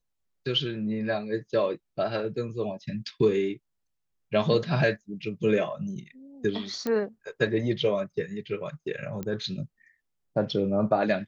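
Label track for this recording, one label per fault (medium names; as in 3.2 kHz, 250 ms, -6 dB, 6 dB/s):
6.870000	6.870000	pop -16 dBFS
9.230000	9.230000	pop -21 dBFS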